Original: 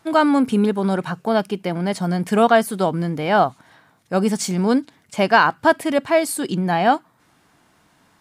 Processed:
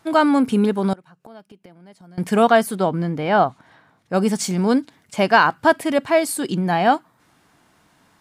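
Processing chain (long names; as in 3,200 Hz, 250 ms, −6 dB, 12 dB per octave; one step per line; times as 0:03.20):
0:00.93–0:02.18: gate with flip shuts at −21 dBFS, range −24 dB
0:02.75–0:04.14: low-pass filter 3,400 Hz 6 dB per octave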